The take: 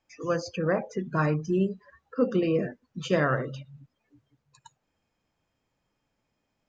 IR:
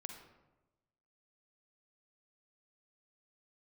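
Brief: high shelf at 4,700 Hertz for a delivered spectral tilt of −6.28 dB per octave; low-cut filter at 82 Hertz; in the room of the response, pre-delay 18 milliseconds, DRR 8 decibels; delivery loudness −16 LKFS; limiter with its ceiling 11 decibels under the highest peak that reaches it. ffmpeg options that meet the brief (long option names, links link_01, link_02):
-filter_complex "[0:a]highpass=82,highshelf=frequency=4700:gain=-8.5,alimiter=limit=-23dB:level=0:latency=1,asplit=2[link_01][link_02];[1:a]atrim=start_sample=2205,adelay=18[link_03];[link_02][link_03]afir=irnorm=-1:irlink=0,volume=-4.5dB[link_04];[link_01][link_04]amix=inputs=2:normalize=0,volume=17dB"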